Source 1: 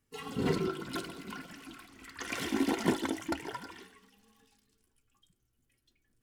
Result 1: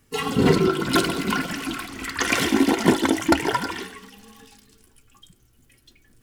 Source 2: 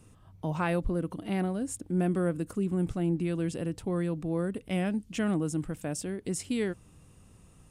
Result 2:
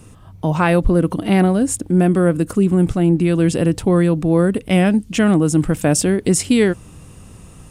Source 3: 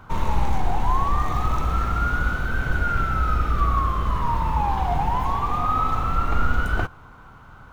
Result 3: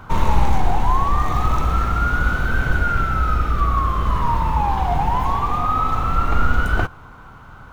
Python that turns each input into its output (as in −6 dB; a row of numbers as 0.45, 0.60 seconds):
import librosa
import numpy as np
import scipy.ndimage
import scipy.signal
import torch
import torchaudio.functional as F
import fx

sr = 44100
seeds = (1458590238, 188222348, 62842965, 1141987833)

y = fx.rider(x, sr, range_db=5, speed_s=0.5)
y = librosa.util.normalize(y) * 10.0 ** (-3 / 20.0)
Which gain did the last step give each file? +14.5, +15.5, +3.5 decibels